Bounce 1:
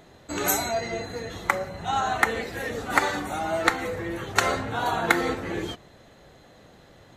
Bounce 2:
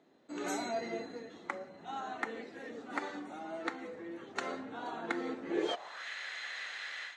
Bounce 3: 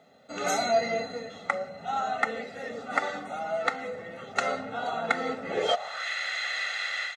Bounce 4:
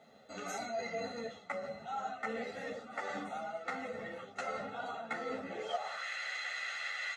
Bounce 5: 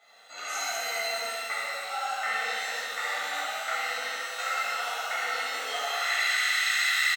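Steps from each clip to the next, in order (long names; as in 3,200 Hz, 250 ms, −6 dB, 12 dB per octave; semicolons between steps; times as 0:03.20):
automatic gain control gain up to 14 dB; band-pass filter sweep 260 Hz → 1,900 Hz, 0:05.48–0:06.08; meter weighting curve ITU-R 468; level +2 dB
comb filter 1.5 ms, depth 91%; level +7.5 dB
dynamic equaliser 3,700 Hz, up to −5 dB, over −50 dBFS, Q 4.5; reversed playback; downward compressor 6 to 1, threshold −35 dBFS, peak gain reduction 15.5 dB; reversed playback; string-ensemble chorus; level +1.5 dB
high-pass filter 1,200 Hz 12 dB per octave; single-tap delay 73 ms −6.5 dB; reverb with rising layers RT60 2.3 s, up +12 semitones, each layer −8 dB, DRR −7.5 dB; level +5 dB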